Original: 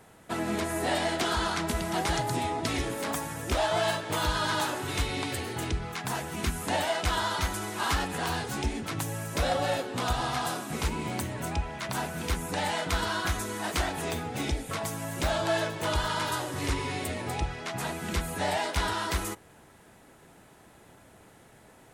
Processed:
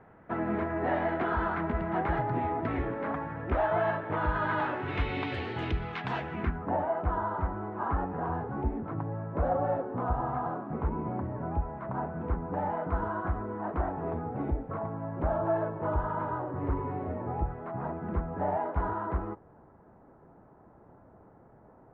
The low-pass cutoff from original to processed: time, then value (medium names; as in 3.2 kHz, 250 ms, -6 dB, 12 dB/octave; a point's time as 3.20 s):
low-pass 24 dB/octave
4.27 s 1.8 kHz
5.42 s 3.2 kHz
6.17 s 3.2 kHz
6.71 s 1.2 kHz